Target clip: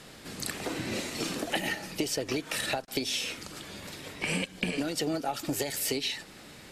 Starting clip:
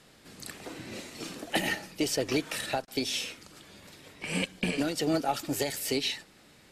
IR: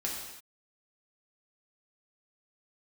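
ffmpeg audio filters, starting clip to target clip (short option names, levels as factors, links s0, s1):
-af "acompressor=threshold=0.0158:ratio=10,volume=2.66"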